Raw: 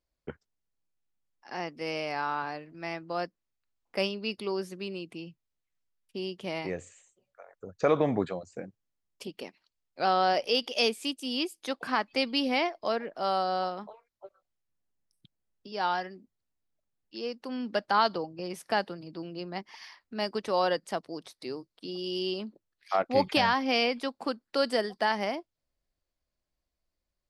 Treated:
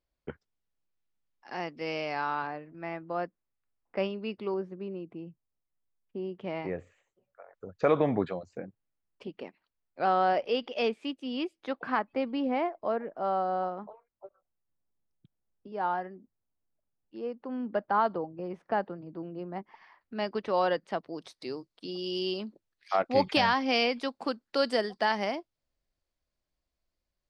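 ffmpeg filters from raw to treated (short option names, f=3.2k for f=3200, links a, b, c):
-af "asetnsamples=n=441:p=0,asendcmd='2.47 lowpass f 1900;4.54 lowpass f 1100;6.35 lowpass f 1900;7.54 lowpass f 3700;8.58 lowpass f 2100;11.99 lowpass f 1300;20.01 lowpass f 3000;21.18 lowpass f 7400',lowpass=4.5k"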